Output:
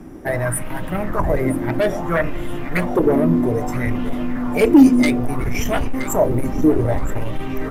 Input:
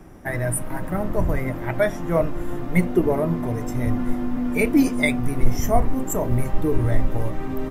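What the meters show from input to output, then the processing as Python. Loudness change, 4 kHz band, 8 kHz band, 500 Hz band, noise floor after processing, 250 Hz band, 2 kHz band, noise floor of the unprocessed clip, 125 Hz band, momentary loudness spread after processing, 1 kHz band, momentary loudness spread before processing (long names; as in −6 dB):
+4.5 dB, +4.5 dB, +1.5 dB, +4.5 dB, −27 dBFS, +6.0 dB, +2.5 dB, −30 dBFS, +0.5 dB, 12 LU, +3.5 dB, 8 LU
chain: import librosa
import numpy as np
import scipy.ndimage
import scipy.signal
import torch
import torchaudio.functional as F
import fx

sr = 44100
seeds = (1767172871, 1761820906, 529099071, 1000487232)

y = fx.fold_sine(x, sr, drive_db=10, ceiling_db=-3.5)
y = fx.echo_feedback(y, sr, ms=973, feedback_pct=25, wet_db=-14)
y = fx.bell_lfo(y, sr, hz=0.61, low_hz=250.0, high_hz=3200.0, db=12)
y = F.gain(torch.from_numpy(y), -11.5).numpy()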